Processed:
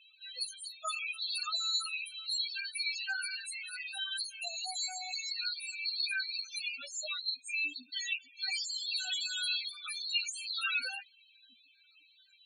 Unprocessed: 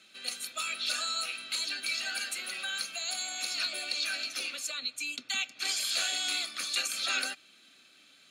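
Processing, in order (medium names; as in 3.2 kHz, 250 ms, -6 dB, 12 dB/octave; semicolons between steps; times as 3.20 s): plain phase-vocoder stretch 1.5×; loudest bins only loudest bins 8; trim +4 dB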